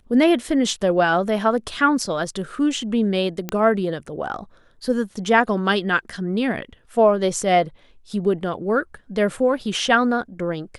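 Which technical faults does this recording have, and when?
3.49 s: pop -10 dBFS

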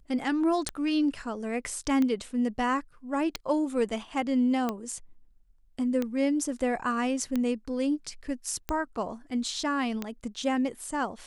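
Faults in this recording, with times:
tick 45 rpm -16 dBFS

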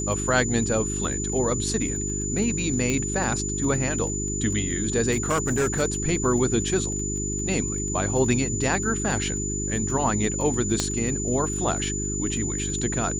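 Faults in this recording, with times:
crackle 16 per s -31 dBFS
hum 50 Hz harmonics 8 -30 dBFS
whine 7 kHz -29 dBFS
2.90 s: pop -12 dBFS
5.11–5.83 s: clipped -18.5 dBFS
10.80 s: pop -9 dBFS

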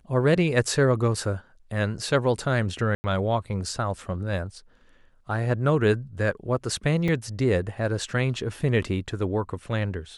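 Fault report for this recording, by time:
2.95–3.04 s: dropout 90 ms
7.08 s: dropout 4.2 ms

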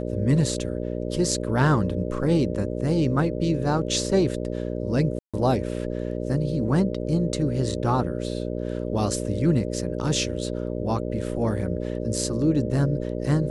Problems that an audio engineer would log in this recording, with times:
buzz 60 Hz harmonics 10 -29 dBFS
5.19–5.34 s: dropout 146 ms

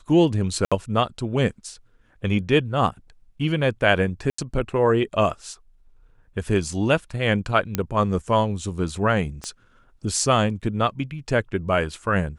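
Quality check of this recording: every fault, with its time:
0.65–0.72 s: dropout 66 ms
4.30–4.38 s: dropout 84 ms
7.75 s: pop -7 dBFS
9.44 s: pop -18 dBFS

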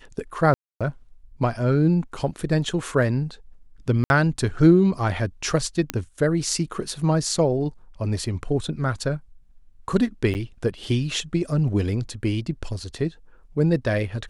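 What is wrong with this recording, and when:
0.54–0.81 s: dropout 266 ms
4.04–4.10 s: dropout 61 ms
5.90 s: pop -8 dBFS
10.34–10.35 s: dropout 9.1 ms

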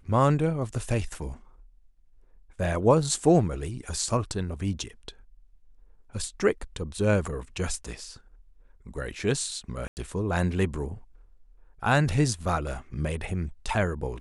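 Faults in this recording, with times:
9.88–9.97 s: dropout 89 ms

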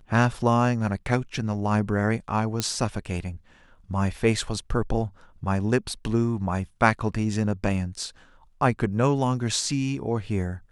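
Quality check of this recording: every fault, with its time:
2.60 s: pop -9 dBFS

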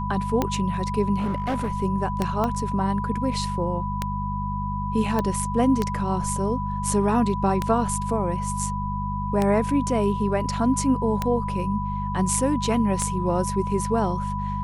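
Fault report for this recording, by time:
hum 50 Hz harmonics 4 -29 dBFS
tick 33 1/3 rpm -9 dBFS
whine 990 Hz -29 dBFS
1.19–1.72 s: clipped -21 dBFS
2.44 s: pop -13 dBFS
5.19 s: pop -12 dBFS

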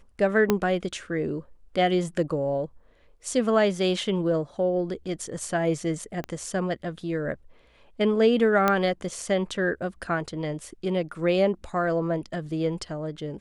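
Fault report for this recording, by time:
0.50 s: pop -7 dBFS
6.24 s: pop -20 dBFS
8.68 s: pop -8 dBFS

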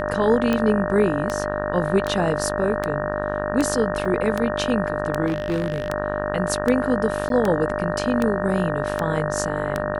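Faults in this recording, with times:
buzz 50 Hz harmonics 37 -28 dBFS
tick 78 rpm -9 dBFS
whine 600 Hz -27 dBFS
4.05 s: dropout 4.5 ms
5.26–5.90 s: clipped -18.5 dBFS
7.29–7.30 s: dropout 12 ms

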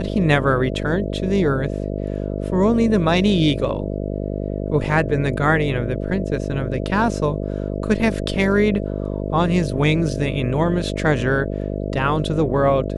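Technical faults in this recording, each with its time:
buzz 50 Hz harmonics 13 -25 dBFS

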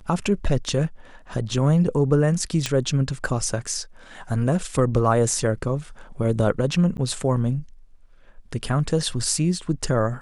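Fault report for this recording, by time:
2.66 s: pop -9 dBFS
6.97–6.98 s: dropout 9.8 ms

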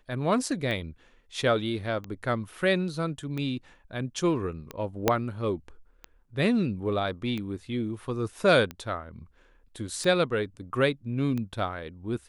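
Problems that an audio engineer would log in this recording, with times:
tick 45 rpm -21 dBFS
5.08 s: pop -6 dBFS

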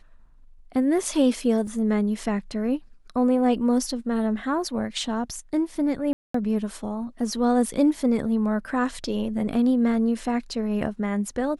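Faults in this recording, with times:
1.67 s: dropout 2.2 ms
6.13–6.34 s: dropout 214 ms

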